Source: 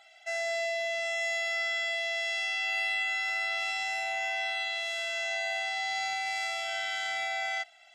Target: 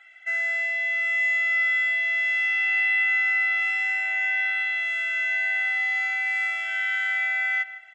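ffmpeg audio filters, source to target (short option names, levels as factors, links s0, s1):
-filter_complex "[0:a]firequalizer=gain_entry='entry(120,0);entry(200,-21);entry(1700,13);entry(4400,-14);entry(6800,-8)':delay=0.05:min_phase=1,asplit=2[s0][s1];[s1]adelay=157,lowpass=f=1700:p=1,volume=0.266,asplit=2[s2][s3];[s3]adelay=157,lowpass=f=1700:p=1,volume=0.42,asplit=2[s4][s5];[s5]adelay=157,lowpass=f=1700:p=1,volume=0.42,asplit=2[s6][s7];[s7]adelay=157,lowpass=f=1700:p=1,volume=0.42[s8];[s0][s2][s4][s6][s8]amix=inputs=5:normalize=0"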